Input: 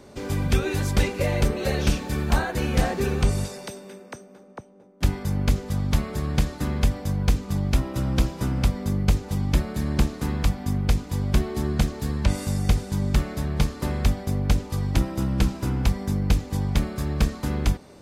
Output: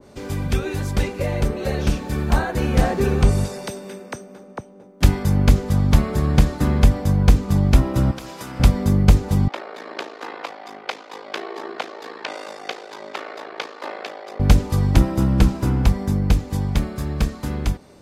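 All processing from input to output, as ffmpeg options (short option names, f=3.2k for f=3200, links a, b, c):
-filter_complex "[0:a]asettb=1/sr,asplit=3[a][b][c];[a]atrim=end=8.114[d];[b]atrim=start=8.11:end=8.6,asetpts=PTS-STARTPTS,afade=t=in:d=0.004:c=qsin,afade=t=out:st=0.486:d=0.004:c=qsin,highpass=f=930:p=1,acompressor=threshold=-36dB:ratio=5:attack=3.2:release=140:knee=1:detection=peak[e];[c]atrim=start=8.596[f];[d][e]acrossfade=d=0.004:c1=hsin:c2=qsin[g];[g][f]acrossfade=d=0.004:c1=qsin:c2=hsin,asettb=1/sr,asplit=3[h][i][j];[h]atrim=end=9.484[k];[i]atrim=start=9.48:end=14.4,asetpts=PTS-STARTPTS,afade=t=in:d=0.004:c=qsin,afade=t=out:st=4.916:d=0.004:c=qsin,highpass=f=300:w=0.5412,highpass=f=300:w=1.3066,aeval=exprs='val(0)*sin(2*PI*27*n/s)':c=same,acrossover=split=430 4800:gain=0.126 1 0.0794[l][m][n];[l][m][n]amix=inputs=3:normalize=0[o];[j]atrim=start=14.396[p];[k][o]acrossfade=d=0.004:c1=hsin:c2=qsin[q];[q][p]acrossfade=d=0.004:c1=qsin:c2=hsin,dynaudnorm=f=300:g=17:m=11.5dB,adynamicequalizer=threshold=0.0126:dfrequency=1700:dqfactor=0.7:tfrequency=1700:tqfactor=0.7:attack=5:release=100:ratio=0.375:range=2.5:mode=cutabove:tftype=highshelf"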